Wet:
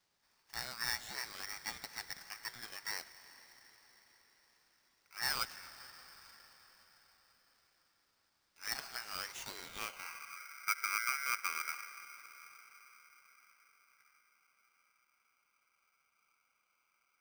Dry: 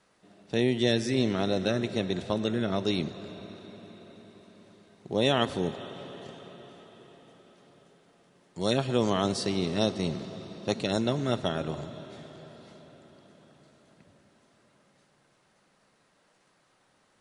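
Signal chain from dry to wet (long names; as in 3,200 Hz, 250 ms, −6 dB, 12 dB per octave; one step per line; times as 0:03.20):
band-pass filter sweep 3,200 Hz → 460 Hz, 0:09.32–0:10.43
ring modulator with a square carrier 1,800 Hz
level −2.5 dB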